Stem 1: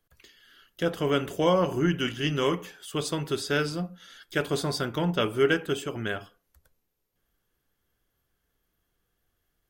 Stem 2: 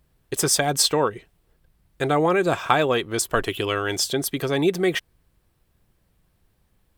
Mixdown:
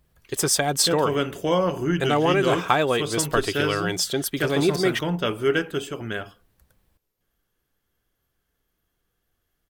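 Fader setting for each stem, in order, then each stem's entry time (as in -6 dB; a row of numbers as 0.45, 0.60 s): +1.0, -1.0 dB; 0.05, 0.00 s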